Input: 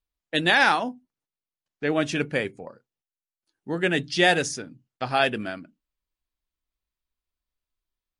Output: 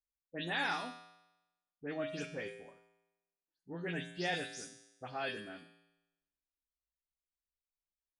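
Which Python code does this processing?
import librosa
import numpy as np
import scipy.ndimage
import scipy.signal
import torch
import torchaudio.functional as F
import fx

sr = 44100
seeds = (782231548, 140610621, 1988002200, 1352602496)

y = fx.spec_delay(x, sr, highs='late', ms=130)
y = fx.comb_fb(y, sr, f0_hz=57.0, decay_s=0.95, harmonics='odd', damping=0.0, mix_pct=80)
y = y * librosa.db_to_amplitude(-4.5)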